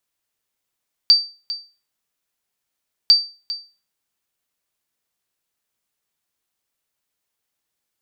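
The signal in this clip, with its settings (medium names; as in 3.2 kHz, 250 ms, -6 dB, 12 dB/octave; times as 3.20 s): sonar ping 4.65 kHz, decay 0.33 s, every 2.00 s, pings 2, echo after 0.40 s, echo -15.5 dB -4 dBFS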